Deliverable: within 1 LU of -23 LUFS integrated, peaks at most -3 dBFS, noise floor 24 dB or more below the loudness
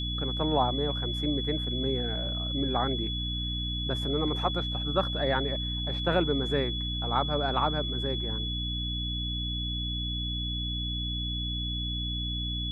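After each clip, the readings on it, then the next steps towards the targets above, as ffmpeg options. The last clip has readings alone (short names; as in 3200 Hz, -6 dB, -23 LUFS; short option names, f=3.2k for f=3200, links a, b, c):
hum 60 Hz; harmonics up to 300 Hz; hum level -31 dBFS; steady tone 3400 Hz; tone level -33 dBFS; loudness -29.5 LUFS; peak -11.5 dBFS; loudness target -23.0 LUFS
-> -af "bandreject=f=60:t=h:w=6,bandreject=f=120:t=h:w=6,bandreject=f=180:t=h:w=6,bandreject=f=240:t=h:w=6,bandreject=f=300:t=h:w=6"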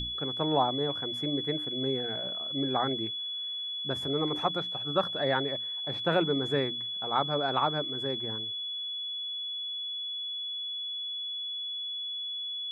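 hum none; steady tone 3400 Hz; tone level -33 dBFS
-> -af "bandreject=f=3.4k:w=30"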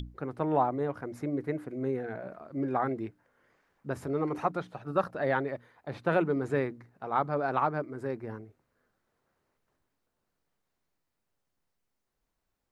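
steady tone none; loudness -32.0 LUFS; peak -13.0 dBFS; loudness target -23.0 LUFS
-> -af "volume=9dB"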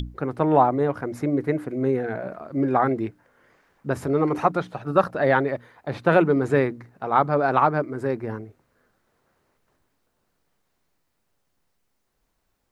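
loudness -23.0 LUFS; peak -4.0 dBFS; noise floor -73 dBFS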